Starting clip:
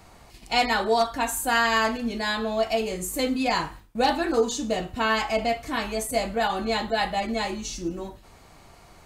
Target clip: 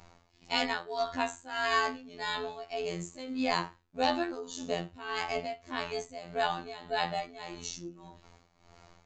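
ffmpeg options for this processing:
-af "tremolo=f=1.7:d=0.82,afftfilt=real='hypot(re,im)*cos(PI*b)':imag='0':win_size=2048:overlap=0.75,aresample=16000,aresample=44100,volume=-1.5dB"

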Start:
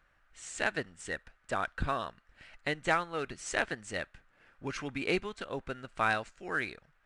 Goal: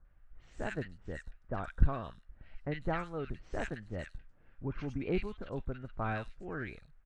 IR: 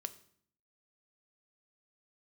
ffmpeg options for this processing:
-filter_complex "[0:a]aemphasis=mode=reproduction:type=riaa,acrossover=split=1500|5200[a][b][c];[b]adelay=50[d];[c]adelay=150[e];[a][d][e]amix=inputs=3:normalize=0,volume=-6dB"

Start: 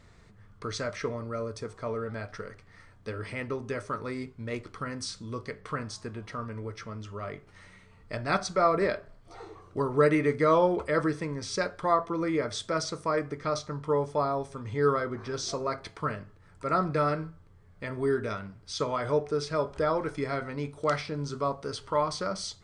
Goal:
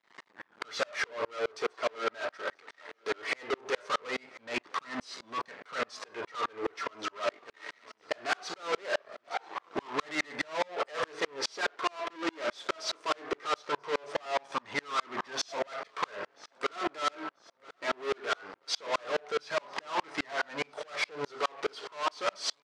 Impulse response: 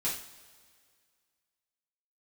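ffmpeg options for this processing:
-filter_complex "[0:a]asplit=2[a][b];[b]acompressor=threshold=-33dB:ratio=6,volume=1dB[c];[a][c]amix=inputs=2:normalize=0,flanger=delay=1:depth=2.2:regen=-10:speed=0.2:shape=sinusoidal,aeval=exprs='sgn(val(0))*max(abs(val(0))-0.00316,0)':c=same,asplit=2[d][e];[e]highpass=f=720:p=1,volume=27dB,asoftclip=type=tanh:threshold=-13.5dB[f];[d][f]amix=inputs=2:normalize=0,lowpass=f=2.7k:p=1,volume=-6dB,asoftclip=type=hard:threshold=-25.5dB,highpass=350,lowpass=6.7k,aecho=1:1:987|1974|2961|3948:0.0794|0.0469|0.0277|0.0163,aeval=exprs='val(0)*pow(10,-36*if(lt(mod(-4.8*n/s,1),2*abs(-4.8)/1000),1-mod(-4.8*n/s,1)/(2*abs(-4.8)/1000),(mod(-4.8*n/s,1)-2*abs(-4.8)/1000)/(1-2*abs(-4.8)/1000))/20)':c=same,volume=3dB"

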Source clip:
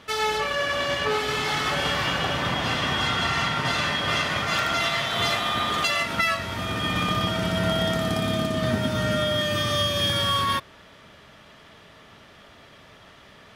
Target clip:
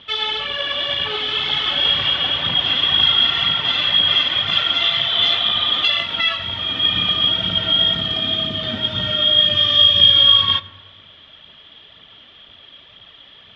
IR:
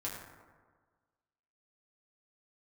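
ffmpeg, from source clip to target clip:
-filter_complex "[0:a]aphaser=in_gain=1:out_gain=1:delay=4.1:decay=0.42:speed=2:type=triangular,lowpass=f=3.3k:t=q:w=10,asplit=2[a][b];[1:a]atrim=start_sample=2205[c];[b][c]afir=irnorm=-1:irlink=0,volume=-12.5dB[d];[a][d]amix=inputs=2:normalize=0,volume=-6dB"

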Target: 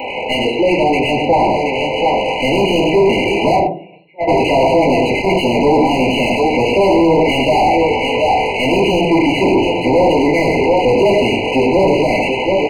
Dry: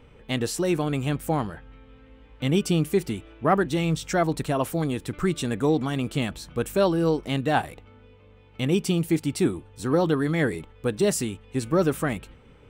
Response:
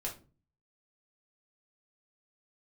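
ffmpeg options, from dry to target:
-filter_complex "[0:a]aeval=exprs='val(0)+0.5*0.0188*sgn(val(0))':c=same,aecho=1:1:97|730:0.355|0.266,asplit=3[a][b][c];[a]afade=t=out:st=3.51:d=0.02[d];[b]agate=range=-47dB:threshold=-15dB:ratio=16:detection=peak,afade=t=in:st=3.51:d=0.02,afade=t=out:st=4.27:d=0.02[e];[c]afade=t=in:st=4.27:d=0.02[f];[d][e][f]amix=inputs=3:normalize=0,dynaudnorm=f=590:g=5:m=11.5dB[g];[1:a]atrim=start_sample=2205,asetrate=48510,aresample=44100[h];[g][h]afir=irnorm=-1:irlink=0,asoftclip=type=tanh:threshold=-16dB,equalizer=f=160:t=o:w=1.6:g=-4,aresample=8000,aresample=44100,aemphasis=mode=production:type=riaa,asplit=2[i][j];[j]highpass=f=720:p=1,volume=36dB,asoftclip=type=tanh:threshold=-1.5dB[k];[i][k]amix=inputs=2:normalize=0,lowpass=f=1.1k:p=1,volume=-6dB,afftfilt=real='re*eq(mod(floor(b*sr/1024/1000),2),0)':imag='im*eq(mod(floor(b*sr/1024/1000),2),0)':win_size=1024:overlap=0.75"

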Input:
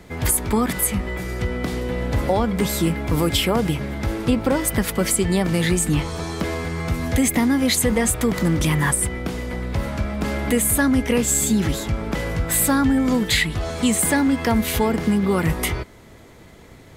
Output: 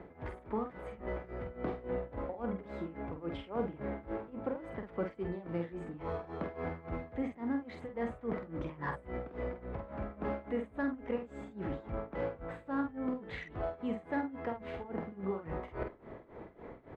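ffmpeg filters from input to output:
-filter_complex "[0:a]areverse,acompressor=threshold=-30dB:ratio=10,areverse,bass=f=250:g=-12,treble=f=4k:g=-11,adynamicsmooth=sensitivity=0.5:basefreq=1.2k,tremolo=f=3.6:d=0.92,asplit=2[a][b];[b]adelay=47,volume=-6dB[c];[a][c]amix=inputs=2:normalize=0,volume=4.5dB"

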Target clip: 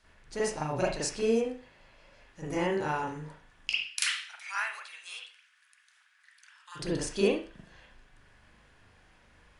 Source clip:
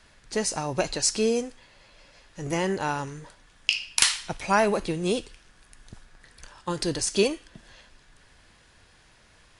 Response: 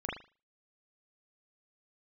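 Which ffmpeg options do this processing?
-filter_complex "[0:a]asplit=3[a][b][c];[a]afade=t=out:st=3.78:d=0.02[d];[b]highpass=f=1.4k:w=0.5412,highpass=f=1.4k:w=1.3066,afade=t=in:st=3.78:d=0.02,afade=t=out:st=6.75:d=0.02[e];[c]afade=t=in:st=6.75:d=0.02[f];[d][e][f]amix=inputs=3:normalize=0[g];[1:a]atrim=start_sample=2205,asetrate=42777,aresample=44100[h];[g][h]afir=irnorm=-1:irlink=0,volume=-7.5dB"

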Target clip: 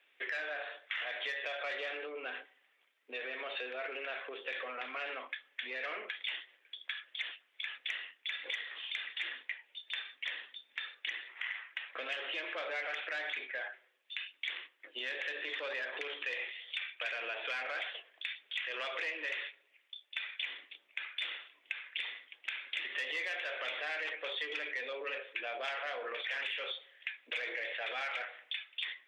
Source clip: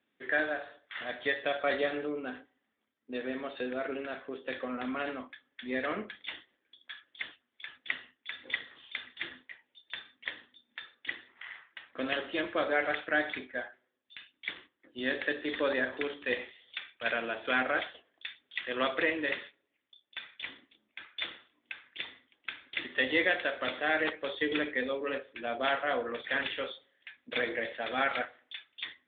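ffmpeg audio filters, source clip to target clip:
-af "asoftclip=type=tanh:threshold=-26dB,alimiter=level_in=10.5dB:limit=-24dB:level=0:latency=1:release=60,volume=-10.5dB,equalizer=f=2.5k:t=o:w=0.94:g=11.5,acompressor=threshold=-42dB:ratio=3,highpass=f=430:w=0.5412,highpass=f=430:w=1.3066,volume=5dB"

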